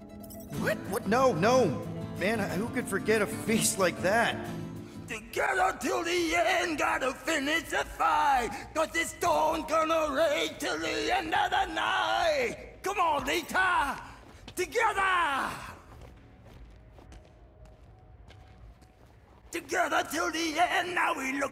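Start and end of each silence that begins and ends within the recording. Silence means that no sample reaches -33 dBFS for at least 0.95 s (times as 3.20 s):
15.71–19.53 s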